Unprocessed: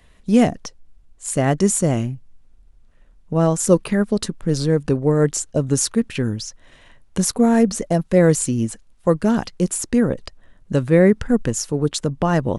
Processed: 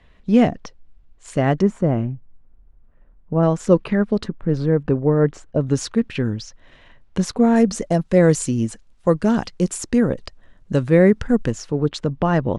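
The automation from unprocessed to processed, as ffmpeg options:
ffmpeg -i in.wav -af "asetnsamples=nb_out_samples=441:pad=0,asendcmd='1.62 lowpass f 1500;3.43 lowpass f 3200;4.24 lowpass f 2000;5.61 lowpass f 4200;7.56 lowpass f 7400;11.52 lowpass f 3700',lowpass=3700" out.wav

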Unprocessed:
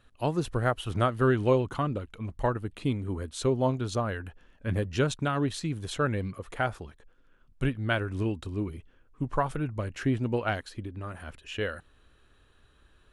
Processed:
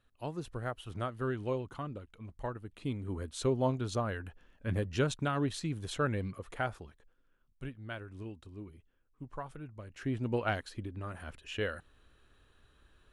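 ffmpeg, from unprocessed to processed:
ffmpeg -i in.wav -af "volume=7.5dB,afade=type=in:start_time=2.69:duration=0.54:silence=0.446684,afade=type=out:start_time=6.31:duration=1.32:silence=0.298538,afade=type=in:start_time=9.87:duration=0.53:silence=0.266073" out.wav

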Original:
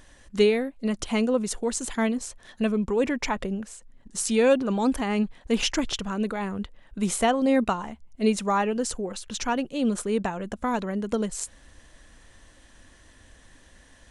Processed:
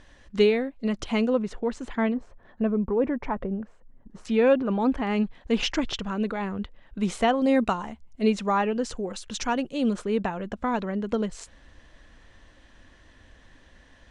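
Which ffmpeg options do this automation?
ffmpeg -i in.wav -af "asetnsamples=nb_out_samples=441:pad=0,asendcmd='1.38 lowpass f 2400;2.14 lowpass f 1200;4.25 lowpass f 2500;5.07 lowpass f 4500;7.42 lowpass f 7800;8.22 lowpass f 4600;8.97 lowpass f 7900;9.93 lowpass f 4200',lowpass=4800" out.wav

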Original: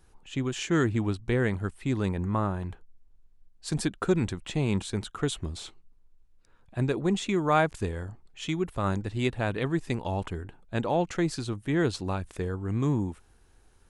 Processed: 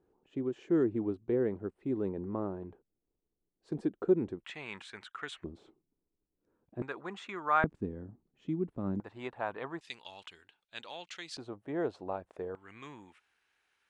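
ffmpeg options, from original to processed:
ffmpeg -i in.wav -af "asetnsamples=nb_out_samples=441:pad=0,asendcmd='4.44 bandpass f 1800;5.44 bandpass f 330;6.82 bandpass f 1300;7.64 bandpass f 250;9 bandpass f 930;9.81 bandpass f 3500;11.37 bandpass f 630;12.55 bandpass f 2300',bandpass=frequency=380:width_type=q:width=1.8:csg=0" out.wav

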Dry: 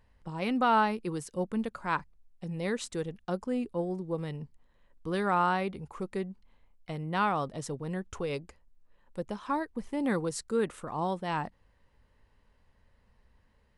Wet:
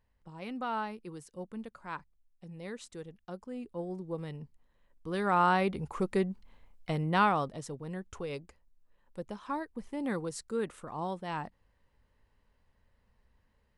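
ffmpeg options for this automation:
ffmpeg -i in.wav -af "volume=5dB,afade=type=in:start_time=3.53:duration=0.46:silence=0.501187,afade=type=in:start_time=5.08:duration=0.79:silence=0.354813,afade=type=out:start_time=6.98:duration=0.65:silence=0.334965" out.wav

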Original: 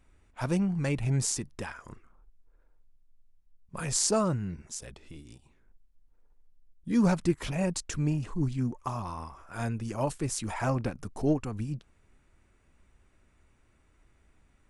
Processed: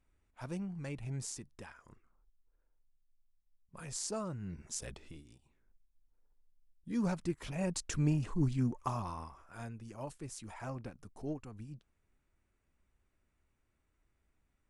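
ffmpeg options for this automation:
ffmpeg -i in.wav -af "volume=8dB,afade=type=in:start_time=4.34:duration=0.55:silence=0.223872,afade=type=out:start_time=4.89:duration=0.39:silence=0.316228,afade=type=in:start_time=7.45:duration=0.55:silence=0.421697,afade=type=out:start_time=8.87:duration=0.82:silence=0.266073" out.wav

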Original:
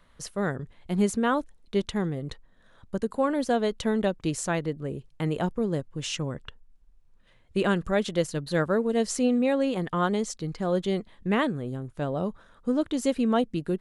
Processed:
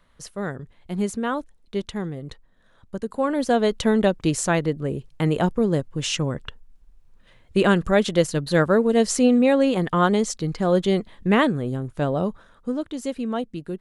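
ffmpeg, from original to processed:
ffmpeg -i in.wav -af "volume=6.5dB,afade=type=in:start_time=3.02:duration=0.72:silence=0.421697,afade=type=out:start_time=12.06:duration=0.78:silence=0.334965" out.wav

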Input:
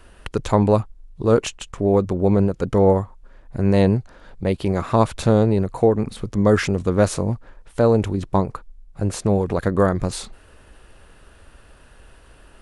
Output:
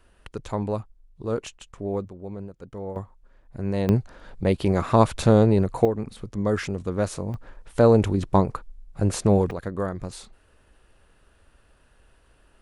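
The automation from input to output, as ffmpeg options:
ffmpeg -i in.wav -af "asetnsamples=nb_out_samples=441:pad=0,asendcmd='2.08 volume volume -19dB;2.96 volume volume -9.5dB;3.89 volume volume -0.5dB;5.85 volume volume -8dB;7.34 volume volume 0dB;9.51 volume volume -10.5dB',volume=-11dB" out.wav

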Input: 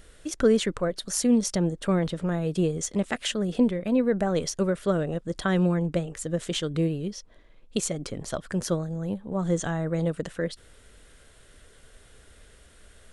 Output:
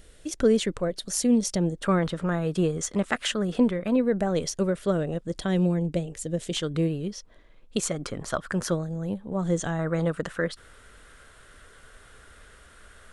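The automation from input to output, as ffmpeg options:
ffmpeg -i in.wav -af "asetnsamples=nb_out_samples=441:pad=0,asendcmd='1.83 equalizer g 7;3.96 equalizer g -2;5.4 equalizer g -9.5;6.57 equalizer g 2;7.84 equalizer g 9;8.71 equalizer g -0.5;9.79 equalizer g 10',equalizer=frequency=1300:width_type=o:width=1.1:gain=-4.5" out.wav

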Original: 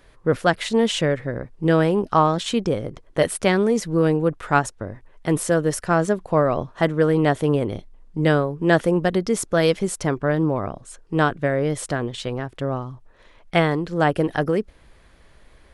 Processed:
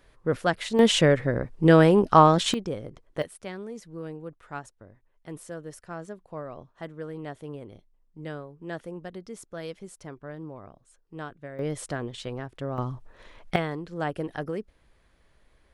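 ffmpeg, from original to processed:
ffmpeg -i in.wav -af "asetnsamples=nb_out_samples=441:pad=0,asendcmd='0.79 volume volume 1.5dB;2.54 volume volume -9.5dB;3.22 volume volume -19dB;11.59 volume volume -7.5dB;12.78 volume volume 1.5dB;13.56 volume volume -11dB',volume=-6dB" out.wav

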